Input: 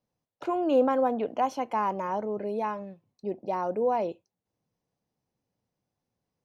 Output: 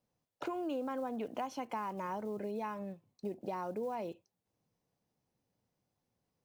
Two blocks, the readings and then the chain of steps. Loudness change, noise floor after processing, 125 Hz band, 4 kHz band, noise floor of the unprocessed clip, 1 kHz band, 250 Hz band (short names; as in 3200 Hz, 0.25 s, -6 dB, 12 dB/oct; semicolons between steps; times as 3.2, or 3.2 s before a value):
-11.5 dB, under -85 dBFS, -5.0 dB, n/a, under -85 dBFS, -11.5 dB, -8.5 dB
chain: block floating point 7-bit; dynamic EQ 610 Hz, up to -6 dB, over -37 dBFS, Q 0.82; compressor 6:1, threshold -35 dBFS, peak gain reduction 12.5 dB